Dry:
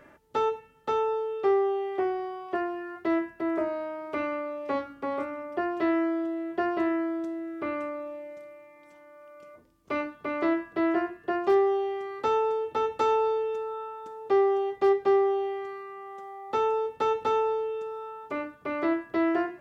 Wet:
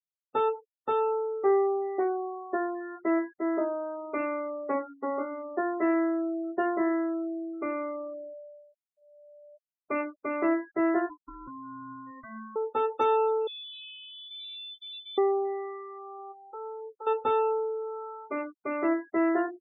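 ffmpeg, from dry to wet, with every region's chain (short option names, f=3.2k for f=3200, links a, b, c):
-filter_complex "[0:a]asettb=1/sr,asplit=3[a][b][c];[a]atrim=end=11.094[d];[b]atrim=start=11.09:end=12.56,asetpts=PTS-STARTPTS,afade=t=in:d=0.004:c=qsin,afade=t=out:st=1.466:d=0.004:c=qsin,lowpass=4.5k,acompressor=threshold=-35dB:ratio=16:attack=3.2:release=140:knee=1:detection=peak,aeval=exprs='val(0)*sin(2*PI*660*n/s)':c=same[e];[c]atrim=start=12.556[f];[d][e]acrossfade=d=0.004:c1=hsin:c2=qsin[g];[g][f]acrossfade=d=0.004:c1=qsin:c2=hsin,asettb=1/sr,asplit=3[h][i][j];[h]atrim=end=13.474[k];[i]atrim=start=13.47:end=15.18,asetpts=PTS-STARTPTS,afade=t=in:d=0.004:c=qsin,afade=t=out:st=1.706:d=0.004:c=qsin,acompressor=threshold=-23dB:ratio=12:attack=3.2:release=140:knee=1:detection=peak,aeval=exprs='(tanh(100*val(0)+0.05)-tanh(0.05))/100':c=same,lowpass=f=3.3k:t=q:w=0.5098,lowpass=f=3.3k:t=q:w=0.6013,lowpass=f=3.3k:t=q:w=0.9,lowpass=f=3.3k:t=q:w=2.563,afreqshift=-3900[l];[j]atrim=start=15.176[m];[k][l]acrossfade=d=0.004:c1=hsin:c2=qsin[n];[n][m]acrossfade=d=0.004:c1=qsin:c2=hsin,asettb=1/sr,asplit=3[o][p][q];[o]atrim=end=16.324[r];[p]atrim=start=16.32:end=17.07,asetpts=PTS-STARTPTS,afade=t=in:d=0.004:c=qsin,afade=t=out:st=0.746:d=0.004:c=qsin,agate=range=-6dB:threshold=-41dB:ratio=16:release=100:detection=peak,acompressor=threshold=-41dB:ratio=2.5:attack=3.2:release=140:knee=1:detection=peak,asoftclip=type=hard:threshold=-34.5dB[s];[q]atrim=start=17.066[t];[r][s]acrossfade=d=0.004:c1=hsin:c2=qsin[u];[u][t]acrossfade=d=0.004:c1=qsin:c2=hsin,afftdn=nr=25:nf=-35,afftfilt=real='re*gte(hypot(re,im),0.00794)':imag='im*gte(hypot(re,im),0.00794)':win_size=1024:overlap=0.75"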